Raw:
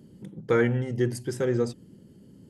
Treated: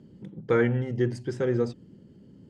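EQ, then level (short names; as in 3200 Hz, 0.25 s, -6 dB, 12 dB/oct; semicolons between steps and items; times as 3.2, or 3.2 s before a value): air absorption 110 m; 0.0 dB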